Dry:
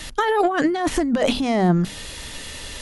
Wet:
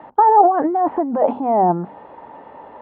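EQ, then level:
high-pass filter 270 Hz 12 dB per octave
low-pass with resonance 870 Hz, resonance Q 5.1
high-frequency loss of the air 440 metres
+1.0 dB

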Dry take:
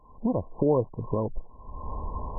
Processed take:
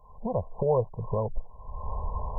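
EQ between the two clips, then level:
phaser with its sweep stopped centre 710 Hz, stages 4
+2.5 dB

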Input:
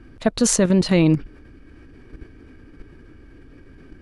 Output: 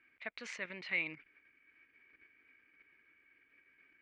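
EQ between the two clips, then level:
resonant band-pass 2,200 Hz, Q 7.2
high-frequency loss of the air 120 metres
+1.0 dB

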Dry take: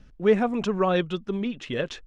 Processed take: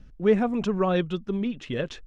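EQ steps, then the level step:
low-shelf EQ 280 Hz +6.5 dB
−3.0 dB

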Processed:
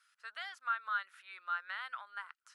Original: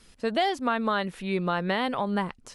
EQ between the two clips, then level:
four-pole ladder high-pass 1,300 Hz, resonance 75%
−4.5 dB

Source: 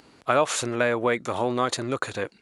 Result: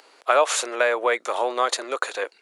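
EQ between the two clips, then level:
high-pass filter 450 Hz 24 dB per octave
+3.5 dB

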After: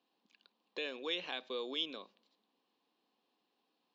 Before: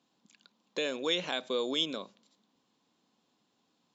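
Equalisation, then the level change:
dynamic equaliser 550 Hz, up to −5 dB, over −47 dBFS, Q 0.82
loudspeaker in its box 420–4,100 Hz, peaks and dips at 610 Hz −6 dB, 960 Hz −4 dB, 1,400 Hz −9 dB, 2,100 Hz −6 dB, 3,500 Hz −6 dB
0.0 dB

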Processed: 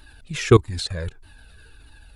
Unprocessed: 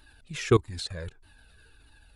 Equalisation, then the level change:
low-shelf EQ 130 Hz +3.5 dB
+6.5 dB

